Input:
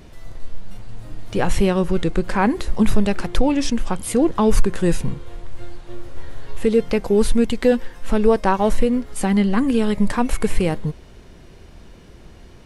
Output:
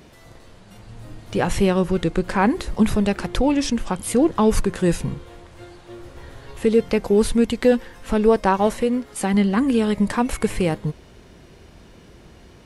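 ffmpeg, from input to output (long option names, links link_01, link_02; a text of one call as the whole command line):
ffmpeg -i in.wav -af "asetnsamples=nb_out_samples=441:pad=0,asendcmd='0.83 highpass f 43;5.27 highpass f 130;5.99 highpass f 49;8.67 highpass f 200;9.34 highpass f 69',highpass=frequency=150:poles=1" out.wav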